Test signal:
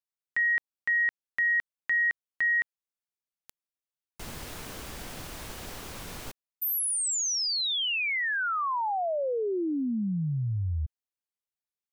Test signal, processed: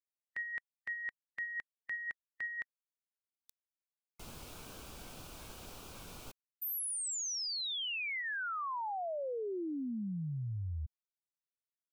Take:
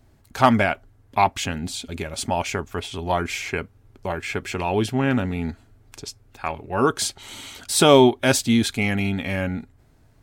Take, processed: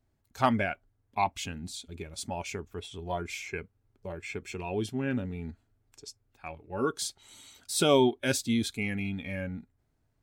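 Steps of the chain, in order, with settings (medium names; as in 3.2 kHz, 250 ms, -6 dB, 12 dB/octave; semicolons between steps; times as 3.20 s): spectral noise reduction 9 dB; trim -9 dB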